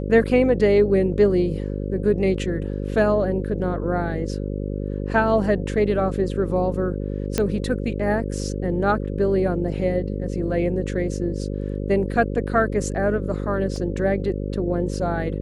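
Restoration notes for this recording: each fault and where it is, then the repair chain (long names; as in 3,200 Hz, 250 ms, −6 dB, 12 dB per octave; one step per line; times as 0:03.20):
mains buzz 50 Hz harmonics 11 −27 dBFS
0:07.38: click −6 dBFS
0:13.76: drop-out 2.5 ms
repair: click removal
hum removal 50 Hz, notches 11
repair the gap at 0:13.76, 2.5 ms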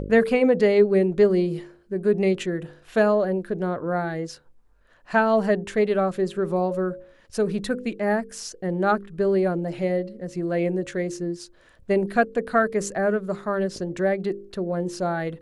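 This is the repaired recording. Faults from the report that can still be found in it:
none of them is left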